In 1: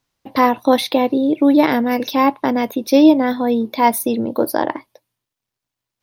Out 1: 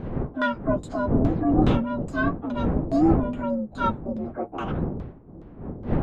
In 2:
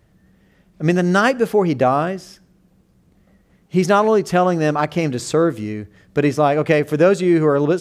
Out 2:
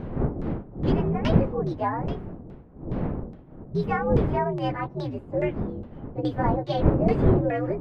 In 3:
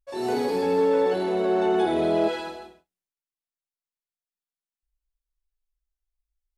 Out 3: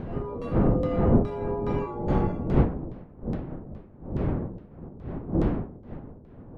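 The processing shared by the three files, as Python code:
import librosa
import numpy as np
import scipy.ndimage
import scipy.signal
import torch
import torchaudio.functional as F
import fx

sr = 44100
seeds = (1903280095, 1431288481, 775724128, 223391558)

y = fx.partial_stretch(x, sr, pct=126)
y = fx.dmg_wind(y, sr, seeds[0], corner_hz=270.0, level_db=-19.0)
y = fx.filter_lfo_lowpass(y, sr, shape='saw_down', hz=2.4, low_hz=550.0, high_hz=4600.0, q=0.83)
y = F.gain(torch.from_numpy(y), -8.5).numpy()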